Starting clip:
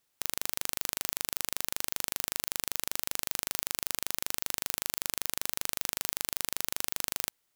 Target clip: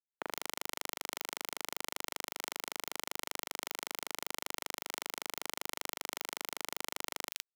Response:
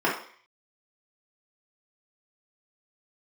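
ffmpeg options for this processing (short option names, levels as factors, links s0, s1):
-filter_complex "[0:a]aeval=exprs='0.75*(cos(1*acos(clip(val(0)/0.75,-1,1)))-cos(1*PI/2))+0.0944*(cos(7*acos(clip(val(0)/0.75,-1,1)))-cos(7*PI/2))':c=same,highshelf=f=4900:g=-12,acrossover=split=190|1900[s0][s1][s2];[s0]adelay=60[s3];[s2]adelay=120[s4];[s3][s1][s4]amix=inputs=3:normalize=0,acrossover=split=150[s5][s6];[s5]aeval=exprs='(mod(501*val(0)+1,2)-1)/501':c=same[s7];[s7][s6]amix=inputs=2:normalize=0,acrossover=split=280[s8][s9];[s9]acompressor=threshold=0.00447:ratio=2.5[s10];[s8][s10]amix=inputs=2:normalize=0,asplit=2[s11][s12];[s12]volume=33.5,asoftclip=hard,volume=0.0299,volume=0.596[s13];[s11][s13]amix=inputs=2:normalize=0,acrusher=bits=6:mix=0:aa=0.5,volume=1.88"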